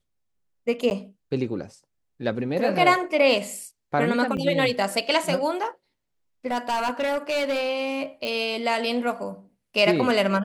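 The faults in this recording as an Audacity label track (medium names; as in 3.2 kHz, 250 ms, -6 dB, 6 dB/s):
0.900000	0.910000	dropout 9.9 ms
4.370000	4.380000	dropout 5.6 ms
6.510000	7.700000	clipped -20.5 dBFS
8.250000	8.250000	pop -17 dBFS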